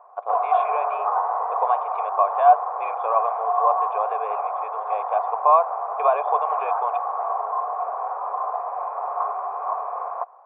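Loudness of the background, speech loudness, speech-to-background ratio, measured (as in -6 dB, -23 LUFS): -26.0 LUFS, -23.5 LUFS, 2.5 dB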